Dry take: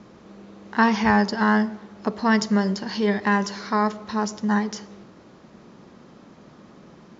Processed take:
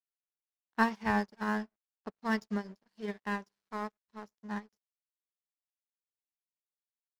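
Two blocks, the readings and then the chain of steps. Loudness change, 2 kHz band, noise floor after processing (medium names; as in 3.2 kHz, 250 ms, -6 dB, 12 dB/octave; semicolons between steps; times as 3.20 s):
-12.5 dB, -11.5 dB, under -85 dBFS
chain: crossover distortion -32.5 dBFS; upward expansion 2.5:1, over -39 dBFS; trim -6.5 dB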